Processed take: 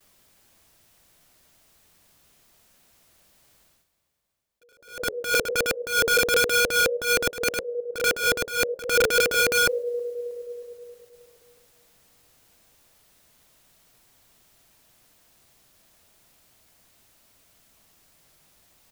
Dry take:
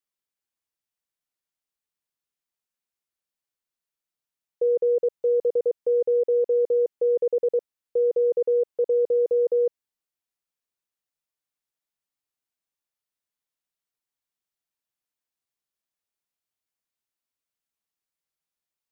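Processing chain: reverse; upward compressor, threshold -38 dBFS; reverse; peaking EQ 650 Hz +5 dB 0.35 oct; flange 1 Hz, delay 9.1 ms, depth 6.5 ms, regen -81%; gate with hold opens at -58 dBFS; feedback delay 316 ms, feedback 58%, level -16 dB; on a send at -17 dB: reverberation RT60 3.4 s, pre-delay 85 ms; on the sum: integer overflow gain 21.5 dB; bass shelf 240 Hz +10 dB; attacks held to a fixed rise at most 130 dB/s; trim +5 dB

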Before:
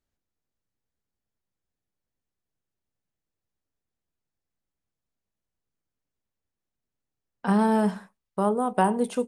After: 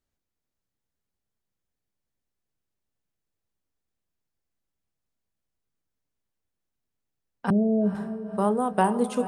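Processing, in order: 7.50–7.95 s: steep low-pass 680 Hz 96 dB/octave; on a send: echo that smears into a reverb 498 ms, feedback 49%, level -11 dB

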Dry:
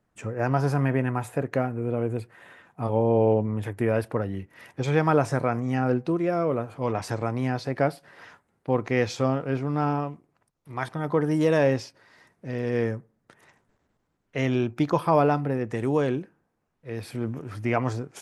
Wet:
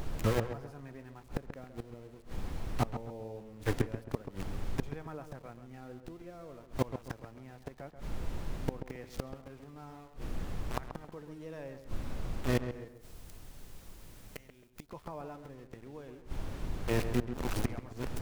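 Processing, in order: small samples zeroed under -33 dBFS; added noise brown -38 dBFS; inverted gate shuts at -20 dBFS, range -27 dB; 12.88–14.89 s: pre-emphasis filter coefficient 0.8; on a send: filtered feedback delay 134 ms, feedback 35%, low-pass 1.9 kHz, level -9 dB; on the sum: trim +3 dB

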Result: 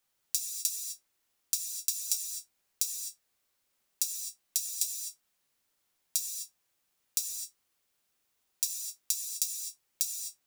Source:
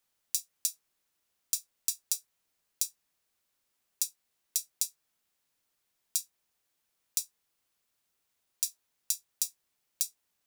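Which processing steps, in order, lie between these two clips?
gated-style reverb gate 280 ms flat, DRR 2 dB

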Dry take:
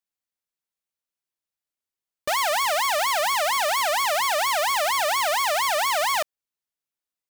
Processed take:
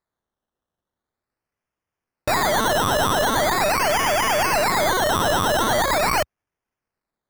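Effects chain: partial rectifier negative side -3 dB; peaking EQ 73 Hz +14.5 dB 2.5 oct; band-stop 1.2 kHz, Q 6.2; decimation with a swept rate 15×, swing 60% 0.42 Hz; trim +4.5 dB

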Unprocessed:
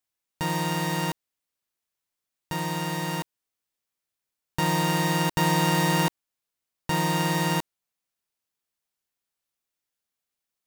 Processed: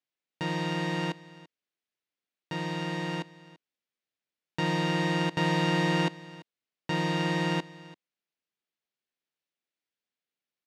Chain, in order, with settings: band-pass 170–3600 Hz; peaking EQ 1 kHz -7 dB 1.2 oct; delay 338 ms -19.5 dB

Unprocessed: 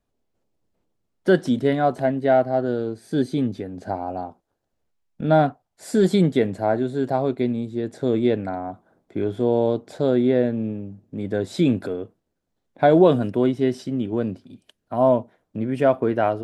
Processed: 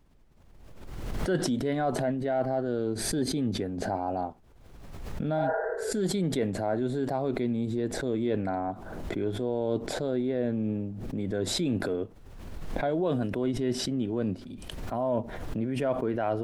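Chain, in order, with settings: spectral replace 5.40–5.89 s, 350–2000 Hz both; reverse; compression 6:1, threshold -26 dBFS, peak gain reduction 15.5 dB; reverse; vibrato 1.3 Hz 29 cents; added noise brown -61 dBFS; swell ahead of each attack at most 35 dB/s

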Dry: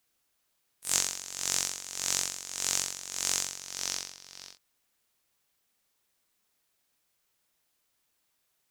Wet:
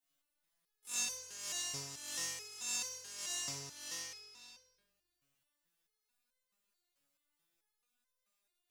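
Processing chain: simulated room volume 390 m³, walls mixed, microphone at 2.6 m; resonator arpeggio 4.6 Hz 140–510 Hz; trim -1.5 dB

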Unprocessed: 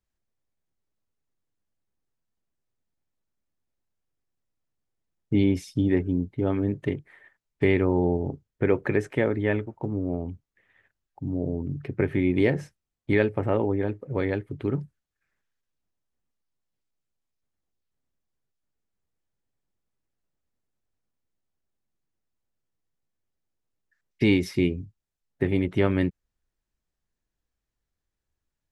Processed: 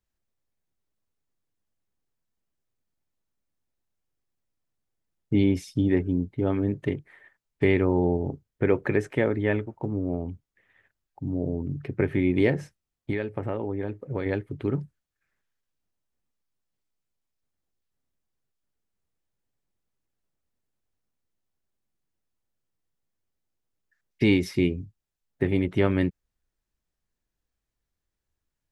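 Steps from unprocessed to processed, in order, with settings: 12.54–14.26 s: compression 6:1, threshold -25 dBFS, peak gain reduction 9.5 dB

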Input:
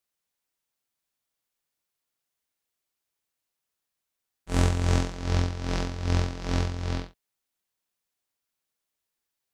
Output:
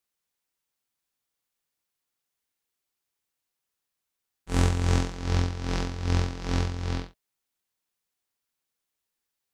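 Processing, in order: band-stop 630 Hz, Q 12

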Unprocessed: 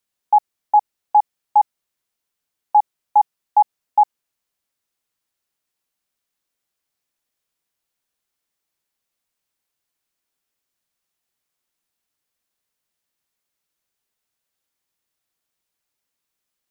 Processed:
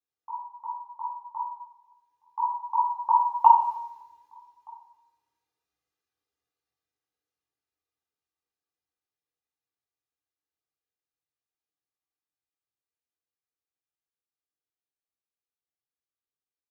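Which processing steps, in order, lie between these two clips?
resonances exaggerated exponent 1.5; Doppler pass-by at 3.60 s, 46 m/s, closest 3.8 m; comb 2.5 ms, depth 66%; in parallel at -2 dB: peak limiter -20.5 dBFS, peak gain reduction 7 dB; on the sum: compression, threshold -26 dBFS, peak gain reduction 11.5 dB; echo from a far wall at 210 m, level -28 dB; reverberation RT60 0.75 s, pre-delay 3 ms, DRR -4.5 dB; trim +3 dB

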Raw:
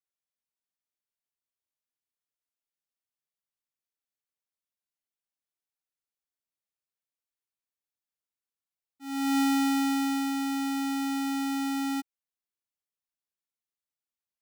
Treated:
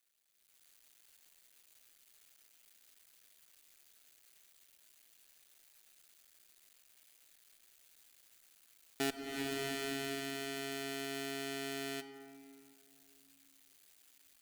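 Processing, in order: cycle switcher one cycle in 2, muted; inverted gate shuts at -35 dBFS, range -33 dB; graphic EQ 125/250/500/1000 Hz -11/-3/-4/-8 dB; level rider gain up to 15 dB; band-stop 5.4 kHz, Q 13; on a send at -10.5 dB: reverberation RT60 2.5 s, pre-delay 5 ms; on the sum: compression 8:1, threshold -50 dBFS, peak gain reduction 21 dB; bass shelf 190 Hz -4.5 dB; loudspeaker Doppler distortion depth 0.12 ms; trim +16.5 dB

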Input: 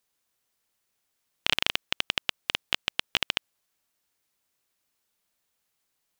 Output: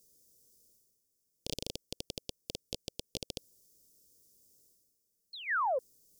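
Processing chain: elliptic band-stop 500–3500 Hz, stop band 40 dB; painted sound fall, 5.33–5.79 s, 480–4400 Hz -30 dBFS; reverse; upward compressor, threshold -52 dBFS; reverse; high-order bell 3.1 kHz -15 dB 1.1 oct; loudspeaker Doppler distortion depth 0.21 ms

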